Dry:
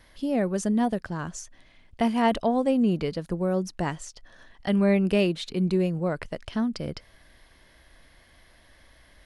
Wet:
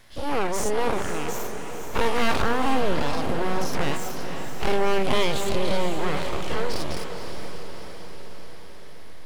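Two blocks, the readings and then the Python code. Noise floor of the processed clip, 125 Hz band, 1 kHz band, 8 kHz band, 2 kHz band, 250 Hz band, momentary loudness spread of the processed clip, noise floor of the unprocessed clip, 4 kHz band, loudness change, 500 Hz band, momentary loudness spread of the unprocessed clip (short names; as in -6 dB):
-32 dBFS, -3.0 dB, +5.0 dB, +6.5 dB, +7.0 dB, -6.0 dB, 17 LU, -57 dBFS, +7.5 dB, -0.5 dB, +1.5 dB, 13 LU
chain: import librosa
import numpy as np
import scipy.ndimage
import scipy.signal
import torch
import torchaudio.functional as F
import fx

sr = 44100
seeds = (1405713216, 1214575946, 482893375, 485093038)

y = fx.spec_dilate(x, sr, span_ms=120)
y = np.abs(y)
y = fx.echo_diffused(y, sr, ms=490, feedback_pct=62, wet_db=-8.0)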